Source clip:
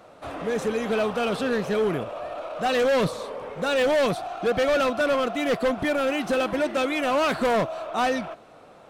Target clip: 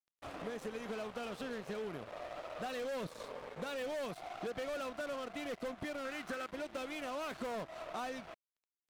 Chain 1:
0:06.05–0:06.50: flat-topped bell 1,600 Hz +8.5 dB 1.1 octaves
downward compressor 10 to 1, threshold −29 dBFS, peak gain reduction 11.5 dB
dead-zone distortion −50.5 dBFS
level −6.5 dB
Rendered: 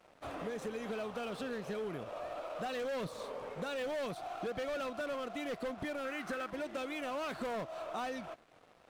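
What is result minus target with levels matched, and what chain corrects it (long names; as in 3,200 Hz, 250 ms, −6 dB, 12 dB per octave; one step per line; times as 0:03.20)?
dead-zone distortion: distortion −11 dB
0:06.05–0:06.50: flat-topped bell 1,600 Hz +8.5 dB 1.1 octaves
downward compressor 10 to 1, threshold −29 dBFS, peak gain reduction 11.5 dB
dead-zone distortion −39.5 dBFS
level −6.5 dB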